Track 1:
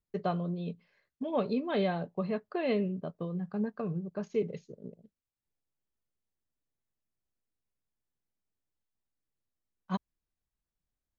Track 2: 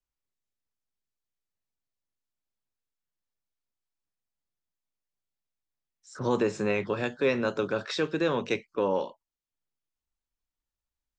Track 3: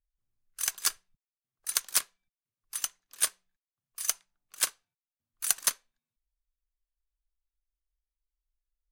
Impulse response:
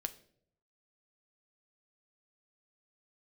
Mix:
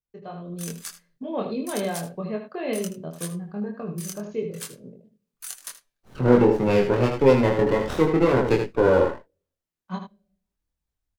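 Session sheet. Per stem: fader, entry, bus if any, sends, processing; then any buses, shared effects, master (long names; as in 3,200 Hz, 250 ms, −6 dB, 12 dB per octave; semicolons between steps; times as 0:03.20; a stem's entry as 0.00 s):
−9.0 dB, 0.00 s, send −5 dB, echo send −4.5 dB, high-pass filter 51 Hz
+2.0 dB, 0.00 s, send −23.5 dB, echo send −6 dB, gate on every frequency bin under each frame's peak −20 dB strong; high-shelf EQ 4,700 Hz −8 dB; windowed peak hold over 17 samples
−12.0 dB, 0.00 s, send −10.5 dB, echo send −12 dB, comb filter 6.9 ms, depth 50%; downward compressor 6 to 1, threshold −30 dBFS, peak gain reduction 11 dB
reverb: on, RT60 0.65 s, pre-delay 6 ms
echo: single-tap delay 78 ms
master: automatic gain control gain up to 10.5 dB; chorus effect 1.8 Hz, depth 2.4 ms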